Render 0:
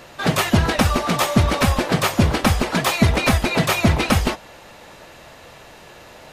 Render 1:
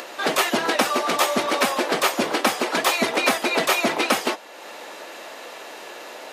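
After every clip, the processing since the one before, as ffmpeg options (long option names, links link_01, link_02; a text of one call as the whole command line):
ffmpeg -i in.wav -af "highpass=frequency=290:width=0.5412,highpass=frequency=290:width=1.3066,acompressor=mode=upward:threshold=-30dB:ratio=2.5" out.wav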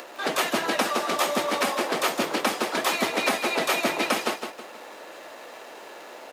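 ffmpeg -i in.wav -filter_complex "[0:a]aecho=1:1:160|320|480|640|800:0.447|0.179|0.0715|0.0286|0.0114,acrossover=split=170|1800[link_01][link_02][link_03];[link_03]aeval=exprs='sgn(val(0))*max(abs(val(0))-0.00316,0)':channel_layout=same[link_04];[link_01][link_02][link_04]amix=inputs=3:normalize=0,volume=-4.5dB" out.wav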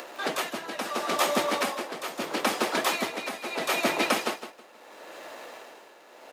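ffmpeg -i in.wav -af "tremolo=f=0.75:d=0.71" out.wav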